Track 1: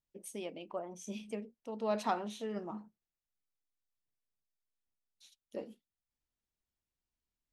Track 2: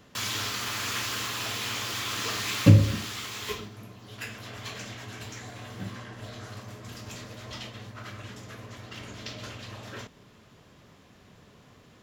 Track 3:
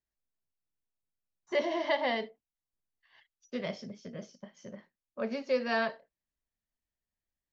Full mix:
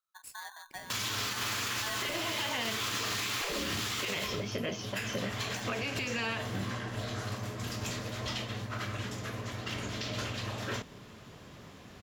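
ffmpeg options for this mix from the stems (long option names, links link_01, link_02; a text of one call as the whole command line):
ffmpeg -i stem1.wav -i stem2.wav -i stem3.wav -filter_complex "[0:a]equalizer=frequency=930:width=0.95:gain=-8.5,aeval=exprs='val(0)*sgn(sin(2*PI*1300*n/s))':channel_layout=same,volume=-7.5dB,asplit=2[link_01][link_02];[1:a]adelay=750,volume=-2dB[link_03];[2:a]acompressor=threshold=-37dB:ratio=6,equalizer=frequency=2700:width_type=o:width=0.54:gain=14.5,dynaudnorm=framelen=210:gausssize=17:maxgain=14dB,adelay=500,volume=-7dB[link_04];[link_02]apad=whole_len=563169[link_05];[link_03][link_05]sidechaincompress=threshold=-52dB:ratio=3:attack=12:release=127[link_06];[link_01][link_06][link_04]amix=inputs=3:normalize=0,afftfilt=real='re*lt(hypot(re,im),0.126)':imag='im*lt(hypot(re,im),0.126)':win_size=1024:overlap=0.75,acontrast=71,alimiter=level_in=0.5dB:limit=-24dB:level=0:latency=1:release=83,volume=-0.5dB" out.wav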